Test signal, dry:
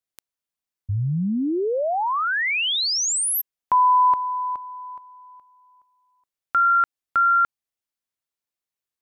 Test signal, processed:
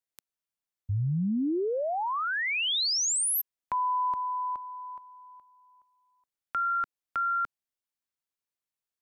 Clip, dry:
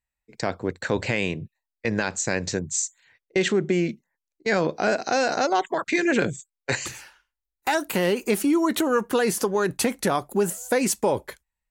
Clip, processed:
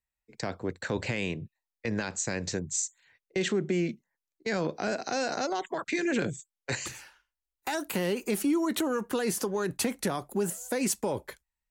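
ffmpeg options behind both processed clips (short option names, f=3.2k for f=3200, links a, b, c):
-filter_complex "[0:a]acrossover=split=310|3800[a][b][c];[b]acompressor=threshold=-24dB:ratio=3:attack=1.1:release=85:knee=2.83:detection=peak[d];[a][d][c]amix=inputs=3:normalize=0,volume=-4.5dB"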